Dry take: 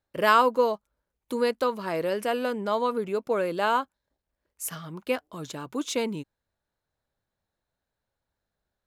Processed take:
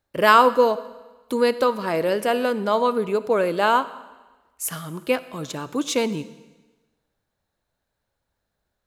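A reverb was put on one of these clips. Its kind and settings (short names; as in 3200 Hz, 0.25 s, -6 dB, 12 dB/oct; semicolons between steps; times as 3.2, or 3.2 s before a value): digital reverb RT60 1.2 s, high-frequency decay 1×, pre-delay 10 ms, DRR 15 dB; gain +5.5 dB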